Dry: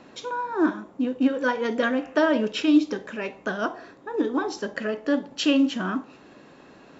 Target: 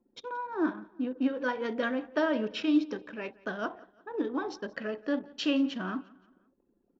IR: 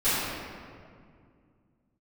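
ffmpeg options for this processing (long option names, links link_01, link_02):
-filter_complex "[0:a]anlmdn=1,lowpass=frequency=5700:width=0.5412,lowpass=frequency=5700:width=1.3066,asplit=2[link_01][link_02];[link_02]aecho=0:1:174|348|522:0.0708|0.0326|0.015[link_03];[link_01][link_03]amix=inputs=2:normalize=0,volume=-7dB"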